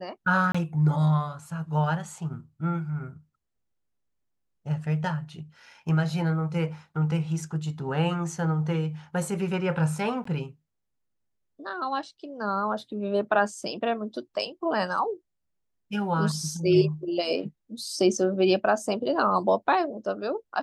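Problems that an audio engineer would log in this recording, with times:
0:00.52–0:00.55: drop-out 25 ms
0:10.24–0:10.25: drop-out 14 ms

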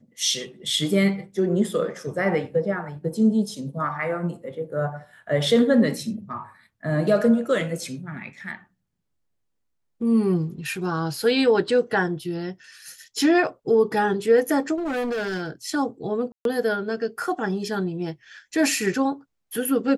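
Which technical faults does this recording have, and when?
0:14.75–0:15.50: clipping −23.5 dBFS
0:16.32–0:16.45: drop-out 132 ms

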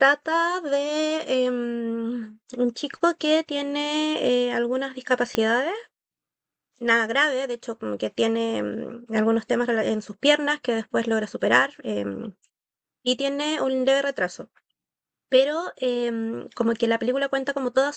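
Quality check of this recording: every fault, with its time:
0:05.35: click −8 dBFS

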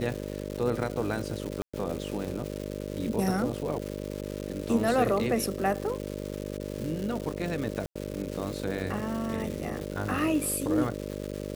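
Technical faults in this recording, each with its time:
mains buzz 50 Hz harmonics 12 −36 dBFS
surface crackle 430 per second −34 dBFS
0:01.62–0:01.74: drop-out 115 ms
0:07.86–0:07.96: drop-out 95 ms

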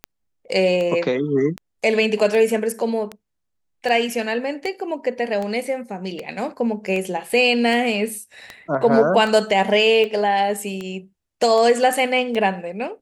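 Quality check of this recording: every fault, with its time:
scratch tick 78 rpm −15 dBFS

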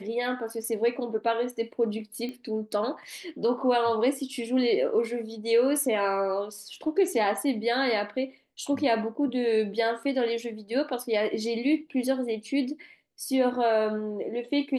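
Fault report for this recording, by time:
0:02.29: click −24 dBFS

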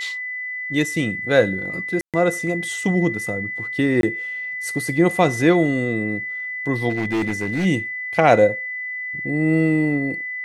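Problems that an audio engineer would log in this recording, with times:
whistle 2,000 Hz −26 dBFS
0:02.01–0:02.14: drop-out 127 ms
0:04.01–0:04.03: drop-out 22 ms
0:06.89–0:07.66: clipping −18 dBFS

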